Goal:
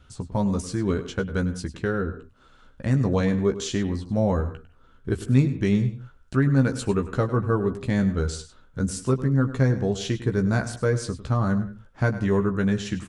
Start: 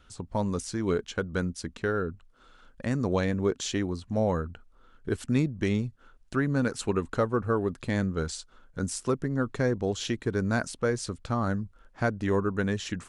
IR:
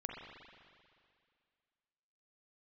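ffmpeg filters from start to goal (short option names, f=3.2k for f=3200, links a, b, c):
-filter_complex "[0:a]equalizer=f=97:w=0.66:g=8.5,asplit=2[a][b];[b]adelay=15,volume=-6dB[c];[a][c]amix=inputs=2:normalize=0,asplit=2[d][e];[1:a]atrim=start_sample=2205,atrim=end_sample=4410,adelay=101[f];[e][f]afir=irnorm=-1:irlink=0,volume=-10.5dB[g];[d][g]amix=inputs=2:normalize=0"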